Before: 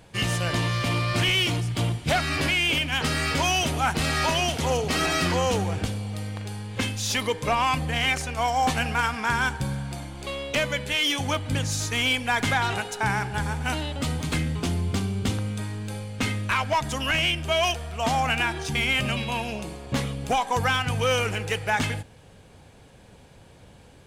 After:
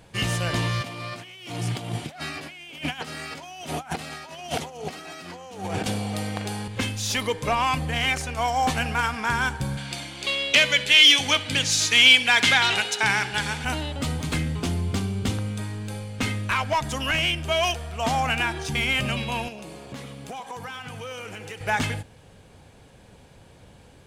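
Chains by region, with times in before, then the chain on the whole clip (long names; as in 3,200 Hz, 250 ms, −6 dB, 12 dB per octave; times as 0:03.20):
0:00.81–0:06.68: high-pass filter 150 Hz + compressor whose output falls as the input rises −32 dBFS, ratio −0.5 + parametric band 730 Hz +6 dB 0.23 octaves
0:09.77–0:13.65: meter weighting curve D + flutter between parallel walls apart 11.1 metres, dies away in 0.21 s
0:19.48–0:21.61: high-pass filter 130 Hz + downward compressor 4 to 1, threshold −35 dBFS + feedback echo at a low word length 99 ms, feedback 55%, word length 11 bits, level −12.5 dB
whole clip: no processing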